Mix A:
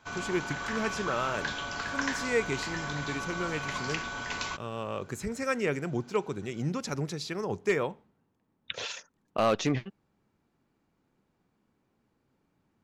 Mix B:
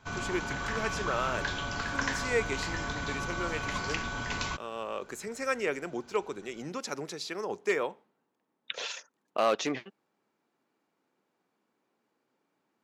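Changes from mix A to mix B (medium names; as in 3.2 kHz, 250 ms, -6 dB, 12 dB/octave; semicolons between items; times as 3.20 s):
speech: add high-pass 340 Hz 12 dB/octave; background: add bass shelf 210 Hz +9.5 dB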